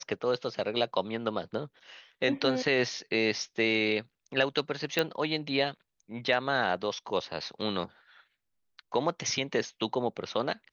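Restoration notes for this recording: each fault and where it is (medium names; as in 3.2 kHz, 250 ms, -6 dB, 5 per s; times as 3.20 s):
4.99 s: pop -11 dBFS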